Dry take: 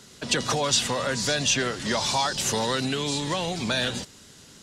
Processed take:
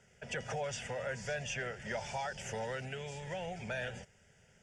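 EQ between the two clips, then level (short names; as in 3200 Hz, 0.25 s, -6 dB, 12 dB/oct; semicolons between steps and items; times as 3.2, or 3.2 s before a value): LPF 12000 Hz 12 dB/oct; air absorption 92 m; fixed phaser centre 1100 Hz, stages 6; -8.5 dB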